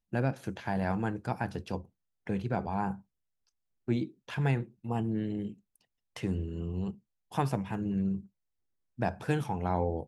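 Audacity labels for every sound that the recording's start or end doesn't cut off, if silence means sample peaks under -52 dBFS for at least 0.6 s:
3.880000	8.270000	sound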